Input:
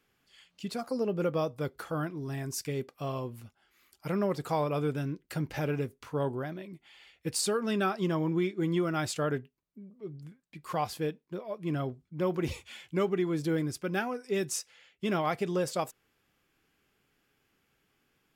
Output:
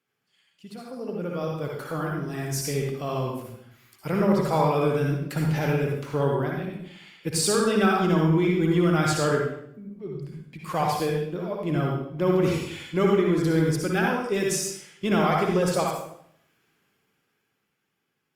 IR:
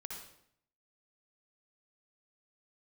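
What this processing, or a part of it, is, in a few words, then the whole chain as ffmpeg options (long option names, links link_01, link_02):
far-field microphone of a smart speaker: -filter_complex "[1:a]atrim=start_sample=2205[link_01];[0:a][link_01]afir=irnorm=-1:irlink=0,highpass=frequency=99:width=0.5412,highpass=frequency=99:width=1.3066,dynaudnorm=framelen=270:gausssize=13:maxgain=13dB,volume=-2.5dB" -ar 48000 -c:a libopus -b:a 48k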